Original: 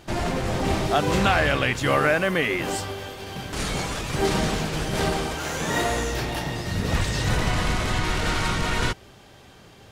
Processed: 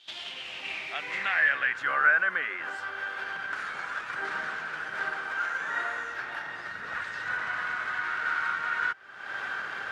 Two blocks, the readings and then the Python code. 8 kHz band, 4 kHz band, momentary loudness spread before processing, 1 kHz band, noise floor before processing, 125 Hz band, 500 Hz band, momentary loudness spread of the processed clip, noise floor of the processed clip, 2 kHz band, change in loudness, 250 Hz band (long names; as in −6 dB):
below −20 dB, −11.0 dB, 8 LU, −6.0 dB, −49 dBFS, −31.5 dB, −18.5 dB, 12 LU, −41 dBFS, +1.5 dB, −5.5 dB, −25.5 dB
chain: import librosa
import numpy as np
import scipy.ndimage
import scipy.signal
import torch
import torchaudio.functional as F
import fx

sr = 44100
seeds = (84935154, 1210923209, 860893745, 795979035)

y = fx.recorder_agc(x, sr, target_db=-17.5, rise_db_per_s=54.0, max_gain_db=30)
y = fx.filter_sweep_bandpass(y, sr, from_hz=3400.0, to_hz=1500.0, start_s=0.11, end_s=1.83, q=6.0)
y = F.gain(torch.from_numpy(y), 5.5).numpy()